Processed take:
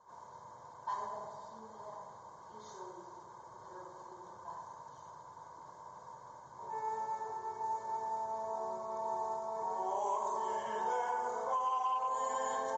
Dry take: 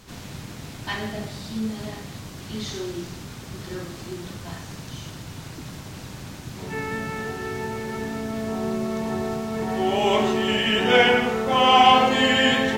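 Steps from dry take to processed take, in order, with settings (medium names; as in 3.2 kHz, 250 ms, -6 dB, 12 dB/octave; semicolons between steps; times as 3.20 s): two resonant band-passes 2.5 kHz, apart 2.9 oct; comb 1.9 ms, depth 55%; on a send: feedback echo behind a low-pass 98 ms, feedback 56%, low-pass 1.3 kHz, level -6 dB; on the sum: level-controlled noise filter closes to 2.5 kHz, open at -26 dBFS; treble shelf 5.4 kHz -8.5 dB; delay 499 ms -22 dB; saturation -15 dBFS, distortion -21 dB; compression 12:1, threshold -34 dBFS, peak gain reduction 14.5 dB; trim +3 dB; MP3 40 kbps 44.1 kHz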